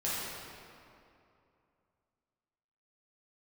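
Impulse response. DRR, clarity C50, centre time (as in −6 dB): −9.5 dB, −4.0 dB, 161 ms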